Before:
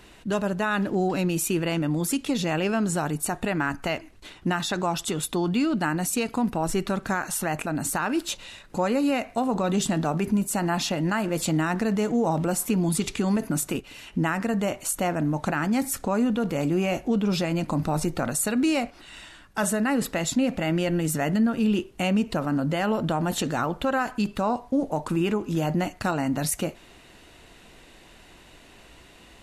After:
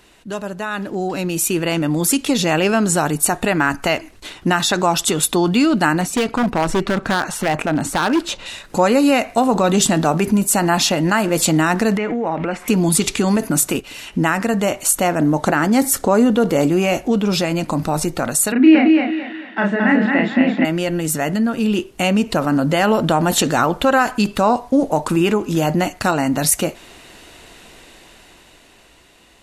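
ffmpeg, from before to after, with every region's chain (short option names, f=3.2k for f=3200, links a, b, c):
-filter_complex "[0:a]asettb=1/sr,asplit=3[a][b][c];[a]atrim=end=6.014[d];[b]atrim=start=6.01:end=8.46,asetpts=PTS-STARTPTS,afade=t=in:d=0.004:c=qsin,afade=t=out:st=2.446:d=0.004:c=qsin,aemphasis=mode=reproduction:type=75fm,aeval=exprs='0.1*(abs(mod(val(0)/0.1+3,4)-2)-1)':c=same[e];[c]atrim=start=8.456[f];[d][e]acrossfade=d=0.004:c1=hsin:c2=qsin[g];[g][f]acrossfade=d=0.004:c1=qsin:c2=hsin,asettb=1/sr,asplit=3[h][i][j];[h]atrim=end=11.974[k];[i]atrim=start=11.97:end=12.68,asetpts=PTS-STARTPTS,afade=t=in:d=0.004:c=qsin,afade=t=out:st=0.706:d=0.004:c=qsin,equalizer=f=140:w=6.7:g=-14.5,acompressor=threshold=-26dB:ratio=10:attack=3.2:release=140:knee=1:detection=peak,lowpass=f=2.2k:t=q:w=3.1[l];[j]atrim=start=12.676[m];[k][l]acrossfade=d=0.004:c1=hsin:c2=qsin[n];[n][m]acrossfade=d=0.004:c1=qsin:c2=hsin,asettb=1/sr,asplit=3[o][p][q];[o]atrim=end=15.194[r];[p]atrim=start=15.19:end=16.67,asetpts=PTS-STARTPTS,afade=t=in:d=0.004:c=qsin,afade=t=out:st=1.476:d=0.004:c=qsin,equalizer=f=410:w=1:g=4.5,bandreject=f=2.5k:w=12[s];[q]atrim=start=16.666[t];[r][s]acrossfade=d=0.004:c1=hsin:c2=qsin[u];[u][t]acrossfade=d=0.004:c1=qsin:c2=hsin,asettb=1/sr,asplit=3[v][w][x];[v]atrim=end=18.524[y];[w]atrim=start=18.52:end=20.65,asetpts=PTS-STARTPTS,afade=t=in:d=0.004:c=qsin,afade=t=out:st=2.126:d=0.004:c=qsin,highpass=f=190:w=0.5412,highpass=f=190:w=1.3066,equalizer=f=200:t=q:w=4:g=7,equalizer=f=310:t=q:w=4:g=6,equalizer=f=510:t=q:w=4:g=-4,equalizer=f=1.2k:t=q:w=4:g=-5,equalizer=f=1.9k:t=q:w=4:g=7,lowpass=f=2.8k:w=0.5412,lowpass=f=2.8k:w=1.3066,asplit=2[z][aa];[aa]adelay=35,volume=-3dB[ab];[z][ab]amix=inputs=2:normalize=0,atrim=end_sample=93933,aecho=1:1:221|442|663|884:0.668|0.214|0.0684|0.0219,atrim=end_sample=93933[ac];[x]atrim=start=20.646[ad];[y][ac]acrossfade=d=0.004:c1=hsin:c2=qsin[ae];[ae][ad]acrossfade=d=0.004:c1=qsin:c2=hsin,bass=f=250:g=-4,treble=f=4k:g=3,dynaudnorm=f=230:g=13:m=11.5dB"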